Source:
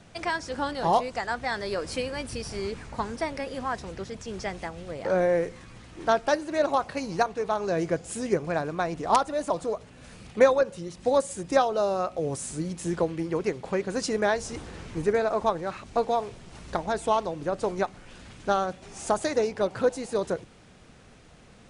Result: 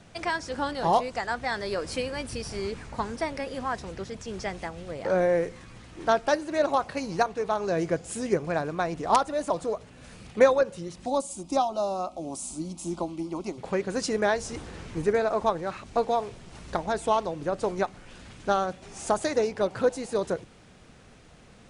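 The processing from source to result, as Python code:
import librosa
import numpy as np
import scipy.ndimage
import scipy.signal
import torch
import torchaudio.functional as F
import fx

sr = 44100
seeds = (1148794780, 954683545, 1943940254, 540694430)

y = fx.fixed_phaser(x, sr, hz=460.0, stages=6, at=(11.06, 13.58))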